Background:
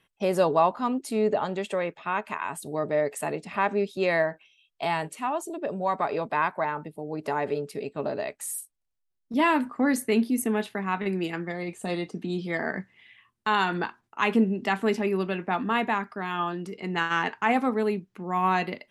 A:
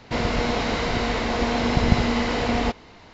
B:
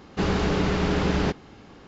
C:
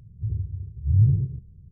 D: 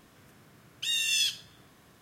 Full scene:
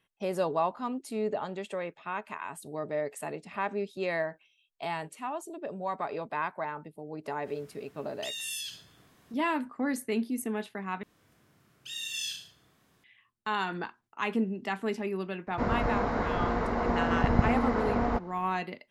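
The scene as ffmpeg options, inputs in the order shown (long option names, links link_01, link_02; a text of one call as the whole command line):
ffmpeg -i bed.wav -i cue0.wav -i cue1.wav -i cue2.wav -i cue3.wav -filter_complex "[4:a]asplit=2[link_01][link_02];[0:a]volume=-7dB[link_03];[link_01]acompressor=threshold=-31dB:ratio=6:attack=3.2:release=140:knee=1:detection=peak[link_04];[link_02]aecho=1:1:30|63|99.3|139.2|183.2:0.631|0.398|0.251|0.158|0.1[link_05];[1:a]highshelf=frequency=2000:width_type=q:width=1.5:gain=-13[link_06];[link_03]asplit=2[link_07][link_08];[link_07]atrim=end=11.034[link_09];[link_05]atrim=end=2.01,asetpts=PTS-STARTPTS,volume=-10.5dB[link_10];[link_08]atrim=start=13.036[link_11];[link_04]atrim=end=2.01,asetpts=PTS-STARTPTS,volume=-3.5dB,afade=type=in:duration=0.1,afade=type=out:start_time=1.91:duration=0.1,adelay=7400[link_12];[link_06]atrim=end=3.13,asetpts=PTS-STARTPTS,volume=-5.5dB,afade=type=in:duration=0.004:curve=hsin,afade=type=out:start_time=3.126:duration=0.004:curve=hsin,adelay=15470[link_13];[link_09][link_10]acrossfade=duration=0.004:curve1=hsin:curve2=hsin[link_14];[link_14][link_11]acrossfade=duration=0.004:curve1=hsin:curve2=hsin[link_15];[link_15][link_12][link_13]amix=inputs=3:normalize=0" out.wav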